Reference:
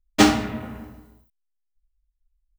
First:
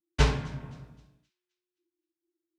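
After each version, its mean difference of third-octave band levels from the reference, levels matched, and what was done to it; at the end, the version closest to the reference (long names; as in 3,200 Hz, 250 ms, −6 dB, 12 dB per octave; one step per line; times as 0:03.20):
4.5 dB: low shelf with overshoot 120 Hz −10 dB, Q 1.5
frequency shifter −360 Hz
high-frequency loss of the air 60 metres
on a send: delay with a high-pass on its return 261 ms, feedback 39%, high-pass 3,000 Hz, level −21 dB
on the sum: level −8 dB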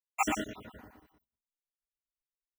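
7.0 dB: time-frequency cells dropped at random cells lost 72%
noise gate −57 dBFS, range −19 dB
low-shelf EQ 280 Hz −9 dB
on a send: multi-tap delay 93/118 ms −17.5/−5 dB
on the sum: level −6 dB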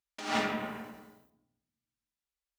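10.5 dB: meter weighting curve A
compressor whose output falls as the input rises −29 dBFS, ratio −1
rectangular room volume 2,800 cubic metres, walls furnished, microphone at 1.2 metres
every ending faded ahead of time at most 130 dB per second
level −4.5 dB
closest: first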